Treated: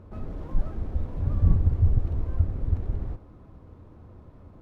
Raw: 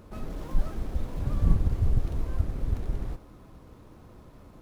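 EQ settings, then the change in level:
low-pass filter 1,200 Hz 6 dB per octave
parametric band 87 Hz +8.5 dB 0.48 octaves
0.0 dB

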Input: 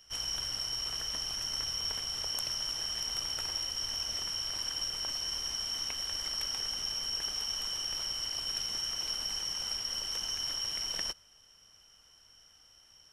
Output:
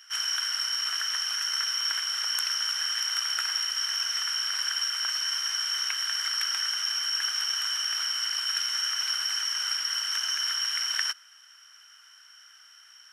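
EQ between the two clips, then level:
high-pass with resonance 1,500 Hz, resonance Q 3.9
+5.5 dB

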